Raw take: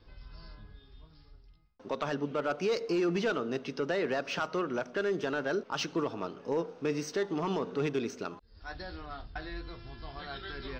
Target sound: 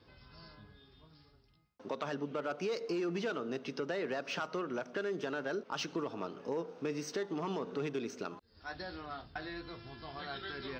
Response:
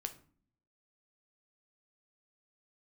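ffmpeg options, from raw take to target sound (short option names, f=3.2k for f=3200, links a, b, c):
-af "highpass=110,acompressor=threshold=-37dB:ratio=2"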